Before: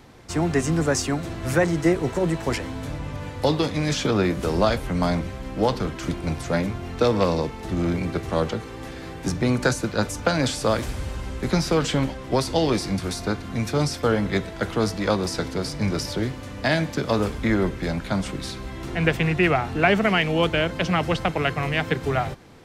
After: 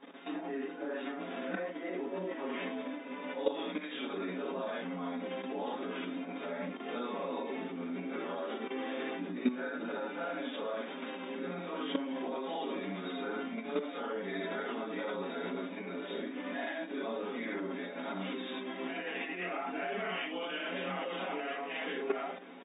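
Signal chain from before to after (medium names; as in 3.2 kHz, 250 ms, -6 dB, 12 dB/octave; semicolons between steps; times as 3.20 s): phase randomisation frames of 200 ms; compression 8:1, threshold -27 dBFS, peak gain reduction 13.5 dB; comb 7.3 ms, depth 85%; level held to a coarse grid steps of 12 dB; FFT band-pass 180–3800 Hz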